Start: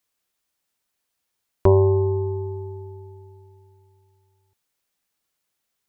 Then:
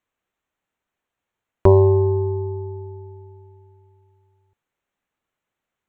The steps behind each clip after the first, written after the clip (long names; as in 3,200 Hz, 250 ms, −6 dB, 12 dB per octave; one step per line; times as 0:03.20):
adaptive Wiener filter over 9 samples
level +3 dB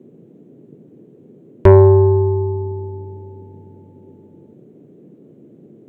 noise in a band 130–430 Hz −51 dBFS
in parallel at −4 dB: sine wavefolder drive 5 dB, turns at −1 dBFS
on the sum: level −2.5 dB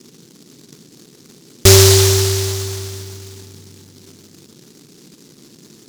short delay modulated by noise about 5,200 Hz, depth 0.34 ms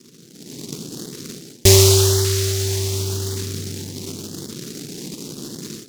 automatic gain control gain up to 16 dB
auto-filter notch saw up 0.89 Hz 690–2,700 Hz
level −4 dB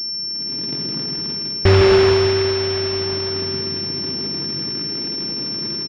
bouncing-ball delay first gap 160 ms, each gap 0.65×, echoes 5
switching amplifier with a slow clock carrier 5,400 Hz